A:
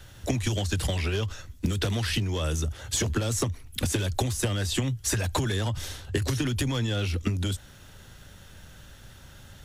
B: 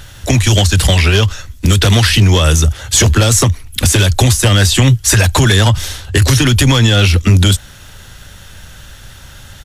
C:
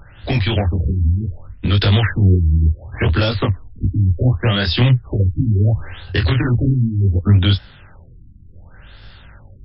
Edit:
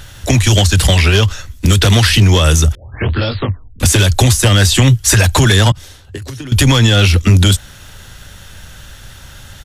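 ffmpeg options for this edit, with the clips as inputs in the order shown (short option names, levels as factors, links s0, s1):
-filter_complex "[1:a]asplit=3[s0][s1][s2];[s0]atrim=end=2.752[s3];[2:a]atrim=start=2.748:end=3.802[s4];[s1]atrim=start=3.798:end=5.722[s5];[0:a]atrim=start=5.718:end=6.522[s6];[s2]atrim=start=6.518[s7];[s3][s4]acrossfade=d=0.004:c1=hsin:c2=hsin[s8];[s8][s5]acrossfade=d=0.004:c1=hsin:c2=hsin[s9];[s9][s6]acrossfade=d=0.004:c1=hsin:c2=hsin[s10];[s10][s7]acrossfade=d=0.004:c1=hsin:c2=hsin"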